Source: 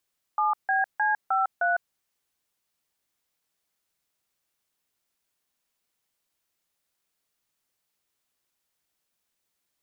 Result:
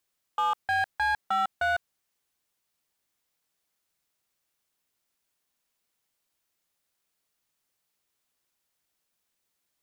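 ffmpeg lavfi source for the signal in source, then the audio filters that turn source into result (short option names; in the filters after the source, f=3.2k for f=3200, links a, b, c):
-f lavfi -i "aevalsrc='0.0668*clip(min(mod(t,0.308),0.154-mod(t,0.308))/0.002,0,1)*(eq(floor(t/0.308),0)*(sin(2*PI*852*mod(t,0.308))+sin(2*PI*1209*mod(t,0.308)))+eq(floor(t/0.308),1)*(sin(2*PI*770*mod(t,0.308))+sin(2*PI*1633*mod(t,0.308)))+eq(floor(t/0.308),2)*(sin(2*PI*852*mod(t,0.308))+sin(2*PI*1633*mod(t,0.308)))+eq(floor(t/0.308),3)*(sin(2*PI*770*mod(t,0.308))+sin(2*PI*1336*mod(t,0.308)))+eq(floor(t/0.308),4)*(sin(2*PI*697*mod(t,0.308))+sin(2*PI*1477*mod(t,0.308))))':d=1.54:s=44100"
-af "asoftclip=type=hard:threshold=-22dB"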